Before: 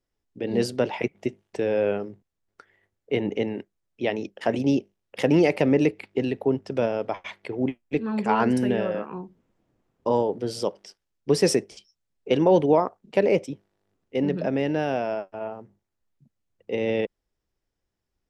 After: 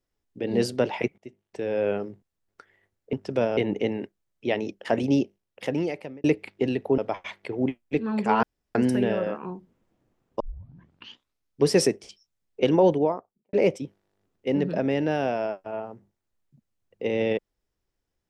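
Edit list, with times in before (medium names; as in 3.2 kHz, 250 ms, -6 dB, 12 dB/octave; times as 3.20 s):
1.18–2.01 s: fade in, from -22.5 dB
4.69–5.80 s: fade out
6.54–6.98 s: move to 3.13 s
8.43 s: insert room tone 0.32 s
10.08 s: tape start 1.22 s
12.38–13.21 s: studio fade out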